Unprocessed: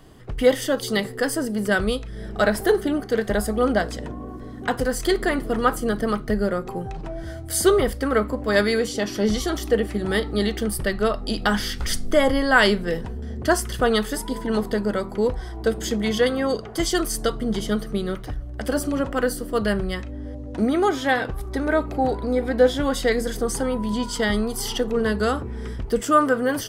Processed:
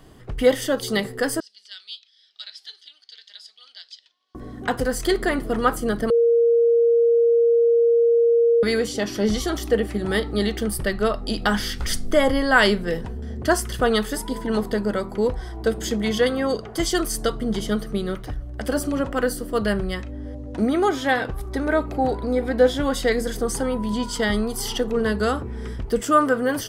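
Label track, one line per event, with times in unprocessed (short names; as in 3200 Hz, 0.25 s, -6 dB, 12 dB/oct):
1.400000	4.350000	Butterworth band-pass 4100 Hz, Q 2.1
6.100000	8.630000	bleep 467 Hz -13.5 dBFS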